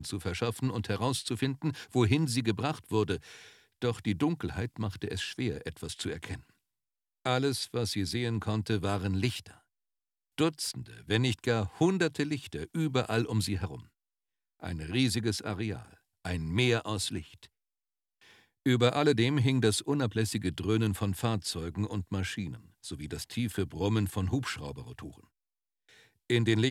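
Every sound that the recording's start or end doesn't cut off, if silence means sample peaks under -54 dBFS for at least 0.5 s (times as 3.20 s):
7.25–9.58 s
10.38–13.87 s
14.60–17.47 s
18.21–25.24 s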